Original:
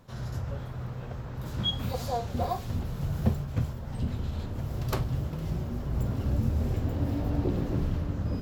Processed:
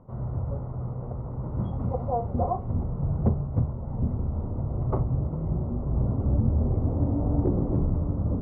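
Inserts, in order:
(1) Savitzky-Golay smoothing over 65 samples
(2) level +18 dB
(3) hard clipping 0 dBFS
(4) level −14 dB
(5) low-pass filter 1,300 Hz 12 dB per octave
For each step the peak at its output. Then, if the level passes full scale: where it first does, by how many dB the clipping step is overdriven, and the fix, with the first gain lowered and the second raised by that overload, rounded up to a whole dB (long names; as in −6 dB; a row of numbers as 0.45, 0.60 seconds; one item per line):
−12.0, +6.0, 0.0, −14.0, −14.0 dBFS
step 2, 6.0 dB
step 2 +12 dB, step 4 −8 dB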